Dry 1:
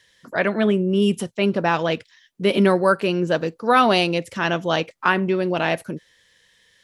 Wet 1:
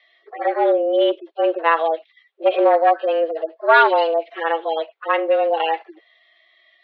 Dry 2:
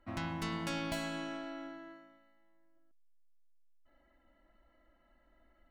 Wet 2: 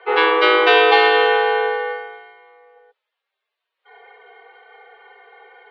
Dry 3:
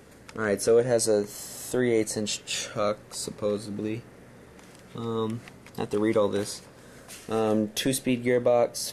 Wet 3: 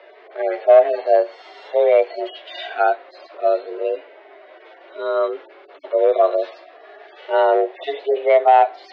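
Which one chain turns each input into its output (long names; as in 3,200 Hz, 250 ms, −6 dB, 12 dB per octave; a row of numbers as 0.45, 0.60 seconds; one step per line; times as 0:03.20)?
harmonic-percussive split with one part muted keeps harmonic
asymmetric clip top −16 dBFS
single-sideband voice off tune +160 Hz 250–3,600 Hz
normalise the peak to −1.5 dBFS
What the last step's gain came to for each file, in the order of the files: +5.0, +27.0, +10.5 decibels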